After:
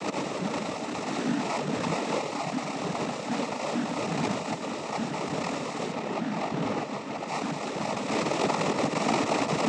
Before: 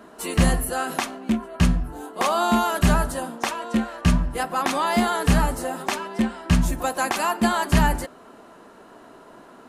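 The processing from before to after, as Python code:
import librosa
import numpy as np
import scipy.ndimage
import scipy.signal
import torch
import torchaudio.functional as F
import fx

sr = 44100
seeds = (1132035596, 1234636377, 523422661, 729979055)

p1 = fx.level_steps(x, sr, step_db=16)
p2 = x + (p1 * 10.0 ** (-1.0 / 20.0))
p3 = fx.fuzz(p2, sr, gain_db=41.0, gate_db=-43.0)
p4 = fx.highpass(p3, sr, hz=180.0, slope=6)
p5 = p4 + fx.echo_wet_highpass(p4, sr, ms=406, feedback_pct=80, hz=2500.0, wet_db=-9.0, dry=0)
p6 = fx.sample_hold(p5, sr, seeds[0], rate_hz=1600.0, jitter_pct=0)
p7 = fx.over_compress(p6, sr, threshold_db=-22.0, ratio=-1.0)
p8 = p7 + 0.75 * np.pad(p7, (int(4.4 * sr / 1000.0), 0))[:len(p7)]
p9 = fx.noise_vocoder(p8, sr, seeds[1], bands=12)
p10 = fx.lowpass(p9, sr, hz=3400.0, slope=6, at=(5.92, 7.28))
p11 = fx.attack_slew(p10, sr, db_per_s=130.0)
y = p11 * 10.0 ** (-9.0 / 20.0)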